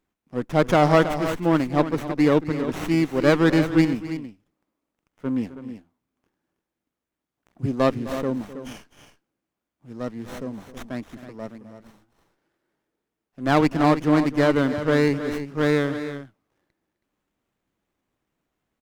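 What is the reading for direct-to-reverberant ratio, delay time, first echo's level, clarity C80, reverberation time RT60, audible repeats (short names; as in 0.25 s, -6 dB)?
none, 0.258 s, -15.5 dB, none, none, 2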